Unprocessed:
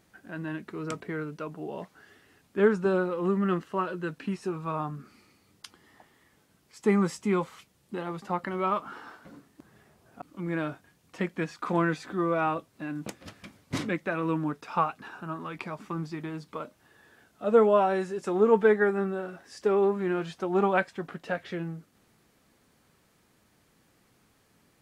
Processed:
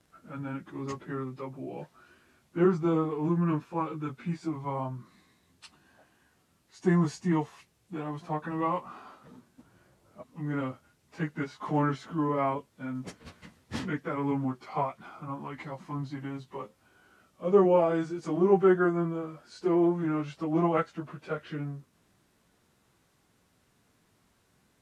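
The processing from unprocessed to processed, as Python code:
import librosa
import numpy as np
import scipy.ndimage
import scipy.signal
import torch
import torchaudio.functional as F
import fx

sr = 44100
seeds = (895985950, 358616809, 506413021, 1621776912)

y = fx.pitch_bins(x, sr, semitones=-2.5)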